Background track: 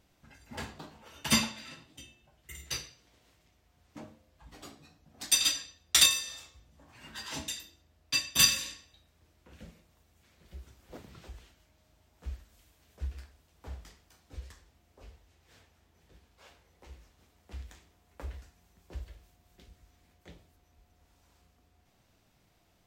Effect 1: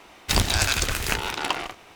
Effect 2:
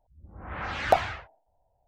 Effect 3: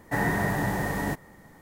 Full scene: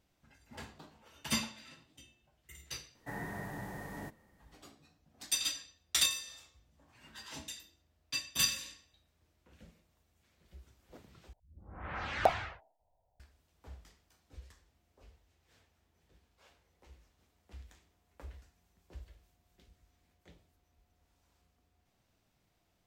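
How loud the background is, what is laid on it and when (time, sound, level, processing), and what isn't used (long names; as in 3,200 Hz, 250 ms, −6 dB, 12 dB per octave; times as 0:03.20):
background track −7.5 dB
0:02.95: mix in 3 −16 dB
0:11.33: overwrite with 2 −6 dB
not used: 1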